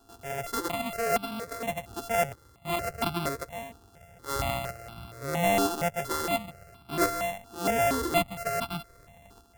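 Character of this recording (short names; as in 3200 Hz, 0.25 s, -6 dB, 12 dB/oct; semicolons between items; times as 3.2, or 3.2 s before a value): a buzz of ramps at a fixed pitch in blocks of 64 samples; tremolo saw up 0.85 Hz, depth 55%; notches that jump at a steady rate 4.3 Hz 570–1900 Hz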